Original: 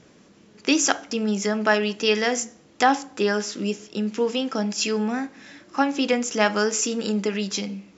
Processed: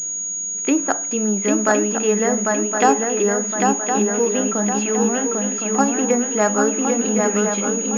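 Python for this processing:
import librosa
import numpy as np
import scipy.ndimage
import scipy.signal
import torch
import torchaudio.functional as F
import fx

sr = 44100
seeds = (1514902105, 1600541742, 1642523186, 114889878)

y = fx.env_lowpass_down(x, sr, base_hz=1400.0, full_db=-18.5)
y = fx.echo_swing(y, sr, ms=1063, ratio=3, feedback_pct=44, wet_db=-3.5)
y = fx.pwm(y, sr, carrier_hz=6700.0)
y = y * librosa.db_to_amplitude(3.0)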